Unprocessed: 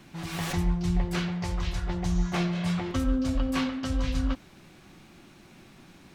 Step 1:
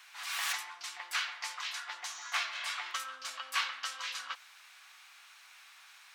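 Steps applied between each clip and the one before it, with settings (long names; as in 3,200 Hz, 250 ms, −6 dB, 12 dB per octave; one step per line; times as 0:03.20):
high-pass filter 1,100 Hz 24 dB per octave
level +2.5 dB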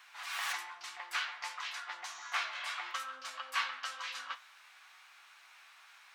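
parametric band 14,000 Hz −8.5 dB 2.8 octaves
flanger 0.58 Hz, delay 9.1 ms, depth 7.4 ms, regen +64%
level +6 dB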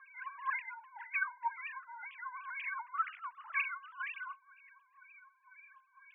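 three sine waves on the formant tracks
LFO wah 2 Hz 620–2,500 Hz, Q 6.2
level +8.5 dB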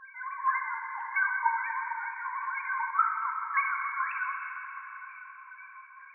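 three sine waves on the formant tracks
dense smooth reverb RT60 4.3 s, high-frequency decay 0.95×, DRR 1 dB
level +7 dB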